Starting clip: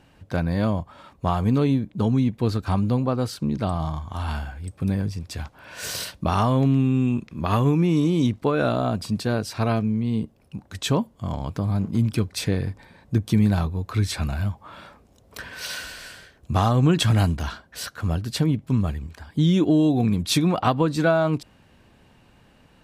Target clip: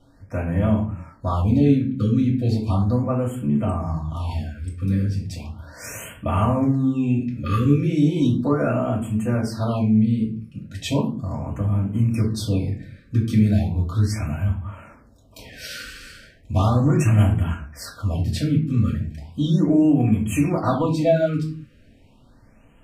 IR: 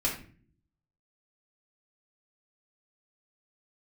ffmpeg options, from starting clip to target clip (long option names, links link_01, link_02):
-filter_complex "[1:a]atrim=start_sample=2205,afade=type=out:start_time=0.35:duration=0.01,atrim=end_sample=15876[link_01];[0:a][link_01]afir=irnorm=-1:irlink=0,afftfilt=real='re*(1-between(b*sr/1024,780*pow(4900/780,0.5+0.5*sin(2*PI*0.36*pts/sr))/1.41,780*pow(4900/780,0.5+0.5*sin(2*PI*0.36*pts/sr))*1.41))':imag='im*(1-between(b*sr/1024,780*pow(4900/780,0.5+0.5*sin(2*PI*0.36*pts/sr))/1.41,780*pow(4900/780,0.5+0.5*sin(2*PI*0.36*pts/sr))*1.41))':win_size=1024:overlap=0.75,volume=-8dB"